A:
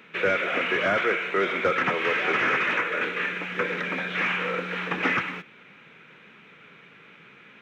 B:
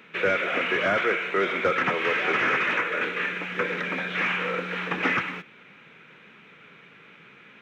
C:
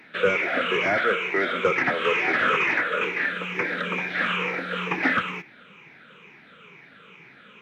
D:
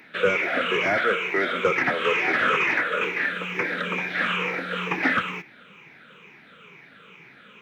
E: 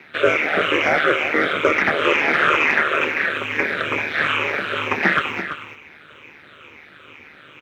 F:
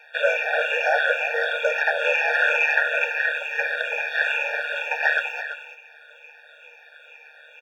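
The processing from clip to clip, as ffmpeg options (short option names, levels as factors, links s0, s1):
-af anull
-af "afftfilt=real='re*pow(10,11/40*sin(2*PI*(0.75*log(max(b,1)*sr/1024/100)/log(2)-(-2.2)*(pts-256)/sr)))':imag='im*pow(10,11/40*sin(2*PI*(0.75*log(max(b,1)*sr/1024/100)/log(2)-(-2.2)*(pts-256)/sr)))':win_size=1024:overlap=0.75"
-af "crystalizer=i=0.5:c=0"
-filter_complex "[0:a]highpass=200,asplit=2[s0][s1];[s1]aecho=0:1:336:0.316[s2];[s0][s2]amix=inputs=2:normalize=0,aeval=exprs='val(0)*sin(2*PI*75*n/s)':c=same,volume=2.37"
-af "bandreject=f=530:w=12,afftfilt=real='re*eq(mod(floor(b*sr/1024/470),2),1)':imag='im*eq(mod(floor(b*sr/1024/470),2),1)':win_size=1024:overlap=0.75"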